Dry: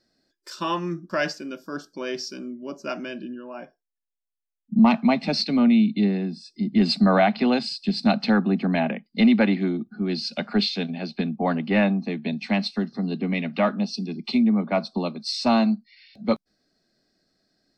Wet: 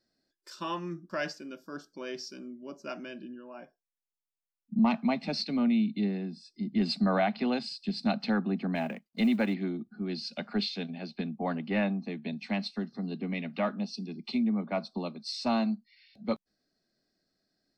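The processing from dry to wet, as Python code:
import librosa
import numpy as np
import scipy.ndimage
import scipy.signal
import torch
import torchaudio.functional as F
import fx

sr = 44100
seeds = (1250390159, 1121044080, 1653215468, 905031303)

y = fx.law_mismatch(x, sr, coded='A', at=(8.74, 9.53), fade=0.02)
y = F.gain(torch.from_numpy(y), -8.5).numpy()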